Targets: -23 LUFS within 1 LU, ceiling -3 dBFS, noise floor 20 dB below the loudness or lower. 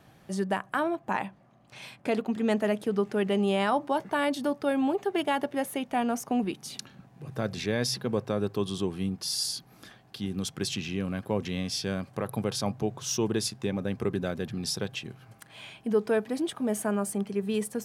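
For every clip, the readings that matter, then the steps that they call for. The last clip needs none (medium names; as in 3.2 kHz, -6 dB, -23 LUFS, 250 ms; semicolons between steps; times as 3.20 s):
loudness -30.0 LUFS; peak level -15.0 dBFS; loudness target -23.0 LUFS
-> trim +7 dB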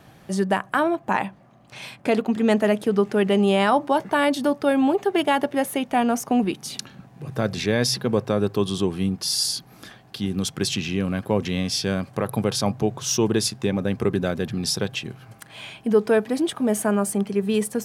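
loudness -23.0 LUFS; peak level -8.0 dBFS; noise floor -51 dBFS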